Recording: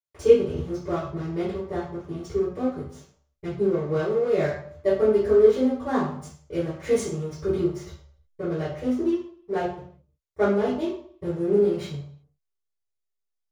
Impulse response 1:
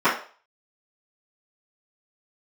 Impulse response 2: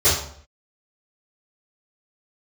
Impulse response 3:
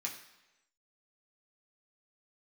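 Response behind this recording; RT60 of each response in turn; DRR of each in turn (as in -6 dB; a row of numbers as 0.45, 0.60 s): 2; 0.40, 0.60, 1.0 s; -15.5, -15.0, -2.5 dB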